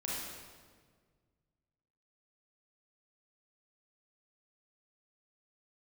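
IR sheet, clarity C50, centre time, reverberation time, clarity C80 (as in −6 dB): −2.5 dB, 107 ms, 1.7 s, 0.5 dB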